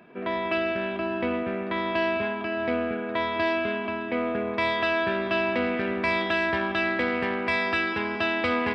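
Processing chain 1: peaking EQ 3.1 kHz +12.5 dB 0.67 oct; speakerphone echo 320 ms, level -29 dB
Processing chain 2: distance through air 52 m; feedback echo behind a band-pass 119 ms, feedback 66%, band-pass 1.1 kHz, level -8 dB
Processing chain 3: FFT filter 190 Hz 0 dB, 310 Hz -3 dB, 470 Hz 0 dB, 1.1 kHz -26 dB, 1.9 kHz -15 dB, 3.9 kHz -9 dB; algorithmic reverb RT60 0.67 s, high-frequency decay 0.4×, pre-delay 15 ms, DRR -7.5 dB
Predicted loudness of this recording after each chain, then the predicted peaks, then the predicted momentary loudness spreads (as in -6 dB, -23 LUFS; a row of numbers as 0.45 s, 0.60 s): -23.0 LUFS, -26.0 LUFS, -25.5 LUFS; -8.5 dBFS, -12.5 dBFS, -13.0 dBFS; 7 LU, 4 LU, 4 LU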